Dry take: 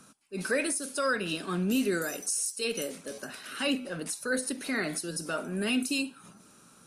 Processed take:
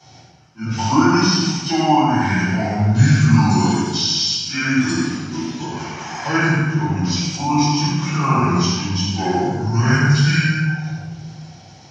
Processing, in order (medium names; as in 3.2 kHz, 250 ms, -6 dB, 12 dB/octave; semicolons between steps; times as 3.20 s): high-pass 170 Hz; band-stop 6 kHz, Q 15; simulated room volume 290 m³, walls mixed, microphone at 6.6 m; speed mistake 78 rpm record played at 45 rpm; trim -1.5 dB